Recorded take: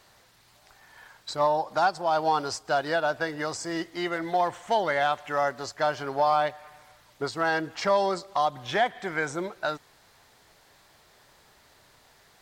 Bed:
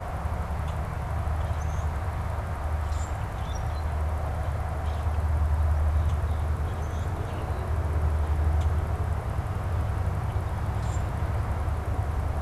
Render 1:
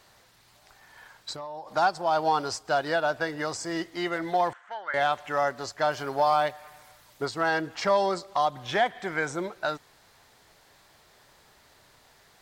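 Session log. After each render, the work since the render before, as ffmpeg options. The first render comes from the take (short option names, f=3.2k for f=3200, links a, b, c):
-filter_complex "[0:a]asettb=1/sr,asplit=3[a][b][c];[a]atrim=end=1.324[d];[b]atrim=start=1.32:end=1.73,asetpts=PTS-STARTPTS,afade=t=in:d=0.004:c=qsin,afade=t=out:st=0.406:d=0.004:c=qsin,acompressor=threshold=-35dB:ratio=8:attack=3.2:release=140:knee=1:detection=peak[e];[c]atrim=start=1.726[f];[d][e]acrossfade=d=0.004:c1=hsin:c2=qsin[g];[g][f]acrossfade=d=0.004:c1=qsin:c2=hsin,asettb=1/sr,asplit=3[h][i][j];[h]atrim=end=4.534[k];[i]atrim=start=4.53:end=4.94,asetpts=PTS-STARTPTS,afade=t=in:d=0.004:c=qsin,afade=t=out:st=0.406:d=0.004:c=qsin,bandpass=f=1.5k:t=q:w=3.1[l];[j]atrim=start=4.936[m];[k][l]acrossfade=d=0.004:c1=hsin:c2=qsin[n];[n][m]acrossfade=d=0.004:c1=qsin:c2=hsin,asettb=1/sr,asplit=3[o][p][q];[o]atrim=end=5.914[r];[p]atrim=start=5.91:end=7.25,asetpts=PTS-STARTPTS,afade=t=in:d=0.004:c=qsin,afade=t=out:st=1.336:d=0.004:c=qsin,highshelf=f=8k:g=9[s];[q]atrim=start=7.246[t];[r][s]acrossfade=d=0.004:c1=hsin:c2=qsin[u];[u][t]acrossfade=d=0.004:c1=qsin:c2=hsin"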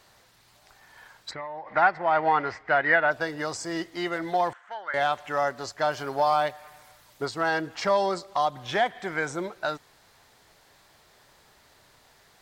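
-filter_complex "[0:a]asplit=3[a][b][c];[a]afade=t=out:st=1.3:d=0.02[d];[b]lowpass=f=2k:t=q:w=10,afade=t=in:st=1.3:d=0.02,afade=t=out:st=3.1:d=0.02[e];[c]afade=t=in:st=3.1:d=0.02[f];[d][e][f]amix=inputs=3:normalize=0"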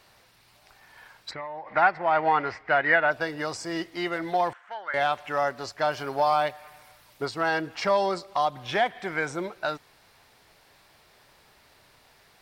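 -af "superequalizer=12b=1.41:15b=0.631"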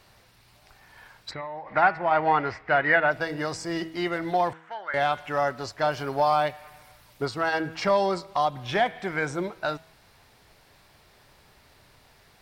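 -af "lowshelf=f=220:g=8,bandreject=f=161.6:t=h:w=4,bandreject=f=323.2:t=h:w=4,bandreject=f=484.8:t=h:w=4,bandreject=f=646.4:t=h:w=4,bandreject=f=808:t=h:w=4,bandreject=f=969.6:t=h:w=4,bandreject=f=1.1312k:t=h:w=4,bandreject=f=1.2928k:t=h:w=4,bandreject=f=1.4544k:t=h:w=4,bandreject=f=1.616k:t=h:w=4,bandreject=f=1.7776k:t=h:w=4,bandreject=f=1.9392k:t=h:w=4,bandreject=f=2.1008k:t=h:w=4,bandreject=f=2.2624k:t=h:w=4,bandreject=f=2.424k:t=h:w=4,bandreject=f=2.5856k:t=h:w=4,bandreject=f=2.7472k:t=h:w=4,bandreject=f=2.9088k:t=h:w=4,bandreject=f=3.0704k:t=h:w=4,bandreject=f=3.232k:t=h:w=4,bandreject=f=3.3936k:t=h:w=4,bandreject=f=3.5552k:t=h:w=4,bandreject=f=3.7168k:t=h:w=4,bandreject=f=3.8784k:t=h:w=4"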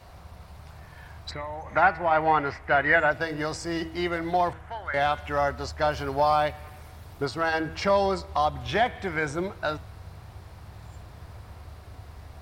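-filter_complex "[1:a]volume=-16dB[a];[0:a][a]amix=inputs=2:normalize=0"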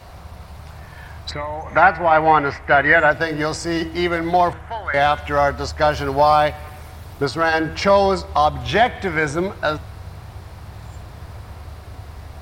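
-af "volume=8dB,alimiter=limit=-2dB:level=0:latency=1"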